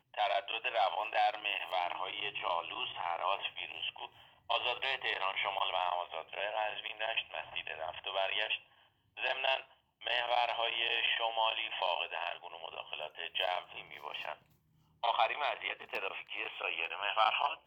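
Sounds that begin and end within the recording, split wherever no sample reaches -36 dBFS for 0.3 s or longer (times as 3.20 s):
4.50–8.56 s
9.19–9.60 s
10.06–14.33 s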